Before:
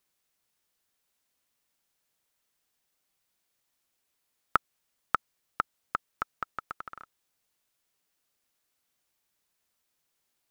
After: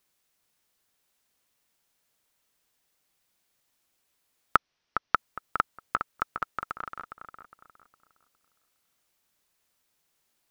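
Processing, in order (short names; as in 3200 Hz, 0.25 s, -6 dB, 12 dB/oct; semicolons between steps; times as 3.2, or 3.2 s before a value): 4.56–5.15 elliptic low-pass 5800 Hz; on a send: darkening echo 0.41 s, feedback 33%, low-pass 2600 Hz, level -7.5 dB; on the sum: gain +3.5 dB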